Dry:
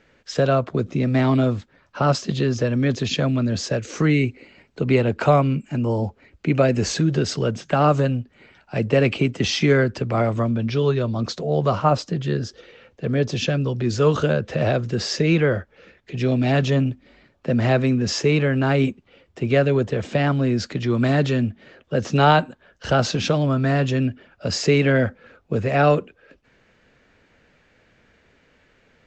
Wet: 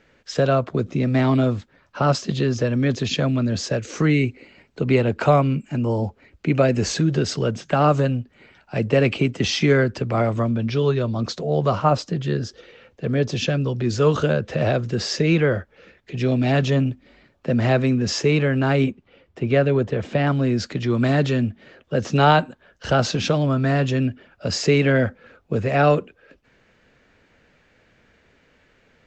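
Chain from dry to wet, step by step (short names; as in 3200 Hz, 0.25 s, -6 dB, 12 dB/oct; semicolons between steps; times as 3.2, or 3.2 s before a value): 18.84–20.27 high shelf 5800 Hz -11 dB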